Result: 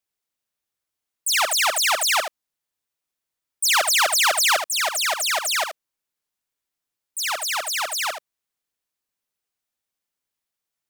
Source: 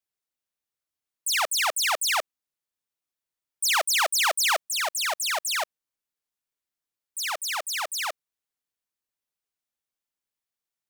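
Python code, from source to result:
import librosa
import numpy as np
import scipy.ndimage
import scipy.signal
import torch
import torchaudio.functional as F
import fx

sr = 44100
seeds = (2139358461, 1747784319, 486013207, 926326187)

y = x + 10.0 ** (-8.5 / 20.0) * np.pad(x, (int(77 * sr / 1000.0), 0))[:len(x)]
y = y * 10.0 ** (4.0 / 20.0)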